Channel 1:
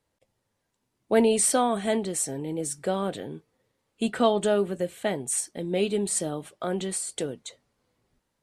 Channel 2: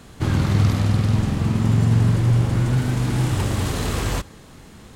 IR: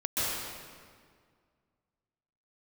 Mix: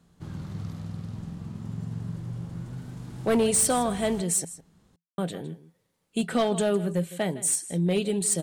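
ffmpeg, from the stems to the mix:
-filter_complex "[0:a]highshelf=f=6.5k:g=7,adelay=2150,volume=-1.5dB,asplit=3[a][b][c];[a]atrim=end=4.45,asetpts=PTS-STARTPTS,afade=t=out:st=4.446:d=0.004:c=hsin[d];[b]atrim=start=4.45:end=5.18,asetpts=PTS-STARTPTS,volume=0[e];[c]atrim=start=5.18,asetpts=PTS-STARTPTS,afade=t=in:d=0.004:c=hsin[f];[d][e][f]concat=n=3:v=0:a=1,asplit=2[g][h];[h]volume=-16.5dB[i];[1:a]equalizer=f=2.3k:t=o:w=0.86:g=-4.5,volume=-20dB[j];[i]aecho=0:1:159:1[k];[g][j][k]amix=inputs=3:normalize=0,equalizer=f=170:t=o:w=0.23:g=14,volume=17.5dB,asoftclip=hard,volume=-17.5dB"

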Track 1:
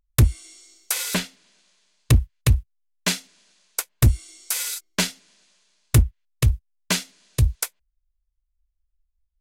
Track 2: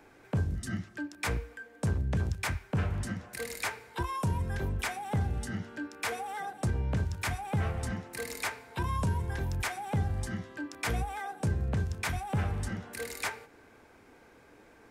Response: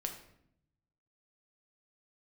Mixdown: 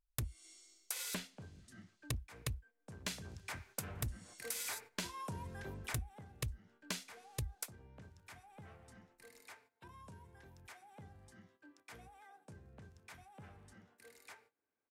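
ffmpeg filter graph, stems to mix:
-filter_complex "[0:a]volume=-12.5dB[a];[1:a]agate=range=-13dB:threshold=-45dB:ratio=16:detection=peak,highpass=f=170:p=1,adelay=1050,volume=-9.5dB,afade=t=in:st=2.95:d=0.76:silence=0.334965,afade=t=out:st=5.88:d=0.38:silence=0.251189[b];[a][b]amix=inputs=2:normalize=0,acompressor=threshold=-37dB:ratio=12"

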